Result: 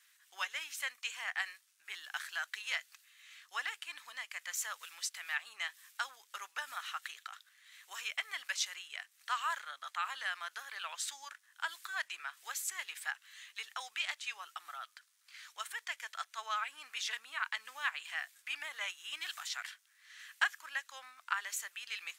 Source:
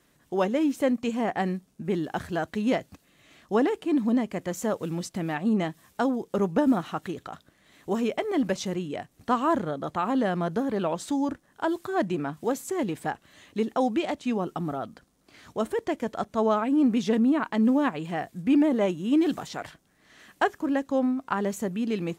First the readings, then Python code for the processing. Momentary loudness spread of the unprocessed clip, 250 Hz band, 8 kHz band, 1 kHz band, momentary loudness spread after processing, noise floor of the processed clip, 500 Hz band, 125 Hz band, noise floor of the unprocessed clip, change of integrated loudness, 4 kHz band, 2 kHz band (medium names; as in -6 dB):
10 LU, under -40 dB, +1.5 dB, -12.0 dB, 13 LU, -71 dBFS, -32.5 dB, under -40 dB, -65 dBFS, -12.5 dB, +1.5 dB, 0.0 dB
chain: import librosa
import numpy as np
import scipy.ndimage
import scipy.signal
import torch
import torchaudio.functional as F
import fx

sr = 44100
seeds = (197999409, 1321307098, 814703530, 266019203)

y = scipy.signal.sosfilt(scipy.signal.butter(4, 1500.0, 'highpass', fs=sr, output='sos'), x)
y = y * 10.0 ** (1.5 / 20.0)